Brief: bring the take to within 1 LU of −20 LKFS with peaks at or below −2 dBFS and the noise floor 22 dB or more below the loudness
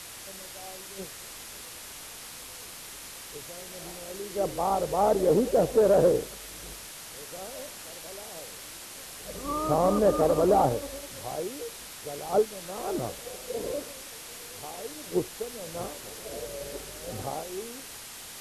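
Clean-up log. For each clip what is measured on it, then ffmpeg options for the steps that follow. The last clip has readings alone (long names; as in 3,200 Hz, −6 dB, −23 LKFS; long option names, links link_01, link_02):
background noise floor −44 dBFS; target noise floor −52 dBFS; integrated loudness −29.5 LKFS; sample peak −11.5 dBFS; target loudness −20.0 LKFS
→ -af "afftdn=noise_reduction=8:noise_floor=-44"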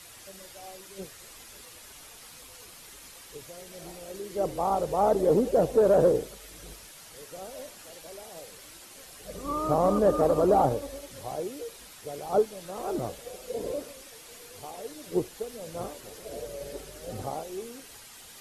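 background noise floor −49 dBFS; target noise floor −50 dBFS
→ -af "afftdn=noise_reduction=6:noise_floor=-49"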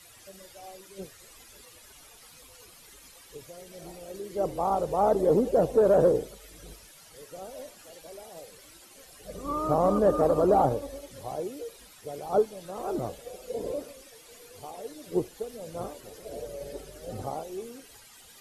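background noise floor −53 dBFS; integrated loudness −27.5 LKFS; sample peak −12.0 dBFS; target loudness −20.0 LKFS
→ -af "volume=7.5dB"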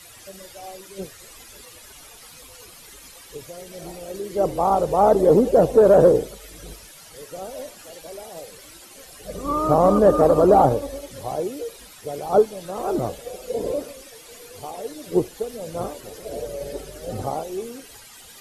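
integrated loudness −20.0 LKFS; sample peak −4.5 dBFS; background noise floor −45 dBFS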